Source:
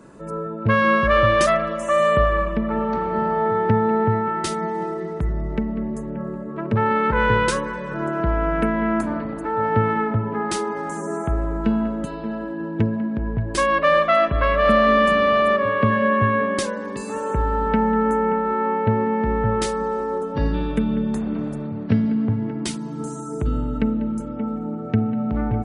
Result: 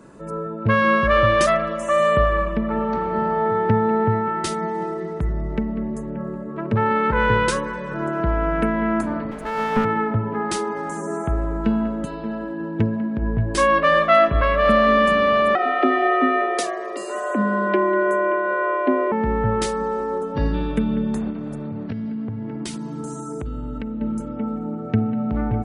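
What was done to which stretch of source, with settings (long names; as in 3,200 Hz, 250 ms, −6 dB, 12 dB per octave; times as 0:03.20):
0:09.31–0:09.85: lower of the sound and its delayed copy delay 4.7 ms
0:13.20–0:14.41: double-tracking delay 18 ms −7.5 dB
0:15.55–0:19.12: frequency shifter +150 Hz
0:21.30–0:24.01: downward compressor, threshold −25 dBFS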